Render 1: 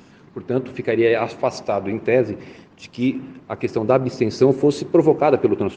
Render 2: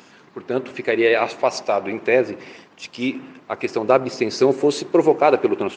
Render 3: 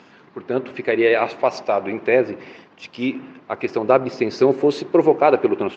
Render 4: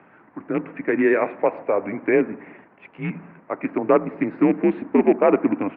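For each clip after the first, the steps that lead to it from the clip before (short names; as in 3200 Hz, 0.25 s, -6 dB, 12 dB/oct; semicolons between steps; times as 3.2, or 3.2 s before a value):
HPF 680 Hz 6 dB/oct; gain +5 dB
air absorption 160 m; gain +1 dB
rattling part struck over -24 dBFS, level -17 dBFS; mistuned SSB -92 Hz 280–2300 Hz; gain -1.5 dB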